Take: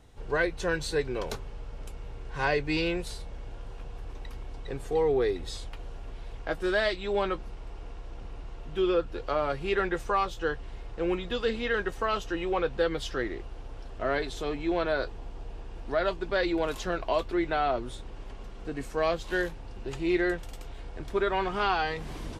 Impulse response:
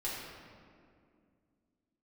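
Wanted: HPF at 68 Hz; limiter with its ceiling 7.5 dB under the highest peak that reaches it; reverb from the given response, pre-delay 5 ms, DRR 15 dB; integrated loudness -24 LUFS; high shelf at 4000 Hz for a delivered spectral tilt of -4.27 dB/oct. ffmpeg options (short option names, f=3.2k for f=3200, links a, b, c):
-filter_complex "[0:a]highpass=68,highshelf=f=4k:g=6,alimiter=limit=-20.5dB:level=0:latency=1,asplit=2[a][b];[1:a]atrim=start_sample=2205,adelay=5[c];[b][c]afir=irnorm=-1:irlink=0,volume=-18.5dB[d];[a][d]amix=inputs=2:normalize=0,volume=8dB"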